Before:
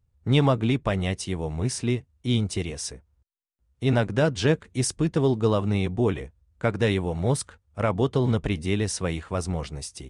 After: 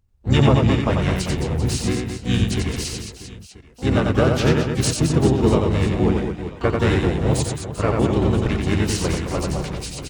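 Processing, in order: harmony voices -12 st -5 dB, -4 st -1 dB, +12 st -13 dB; reverse bouncing-ball echo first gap 90 ms, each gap 1.4×, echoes 5

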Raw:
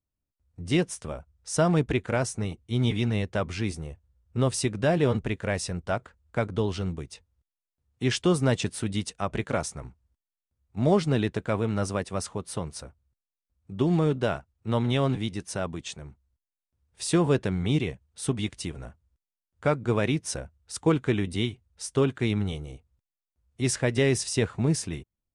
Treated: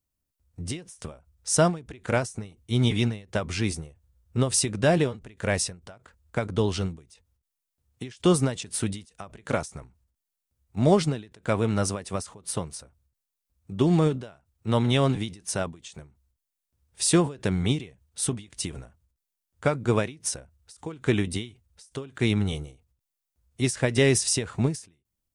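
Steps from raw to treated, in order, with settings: treble shelf 5.3 kHz +8.5 dB; endings held to a fixed fall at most 160 dB/s; trim +2.5 dB

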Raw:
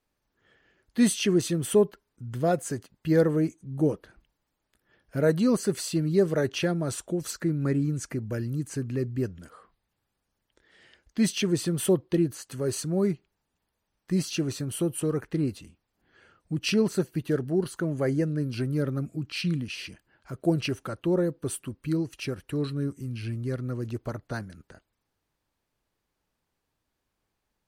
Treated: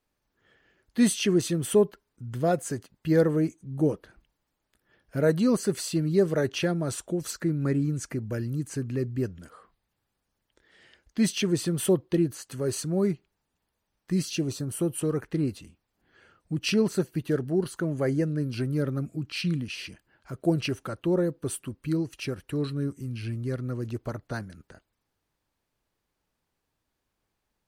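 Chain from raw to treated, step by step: 14.12–14.81 s: peaking EQ 610 Hz -> 3.9 kHz -11.5 dB 0.64 oct

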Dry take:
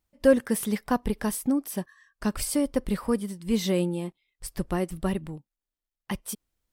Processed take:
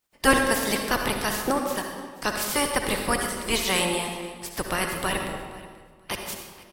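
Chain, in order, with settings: spectral peaks clipped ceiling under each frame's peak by 26 dB; feedback delay 483 ms, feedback 19%, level -20.5 dB; on a send at -3 dB: reverberation RT60 1.5 s, pre-delay 55 ms

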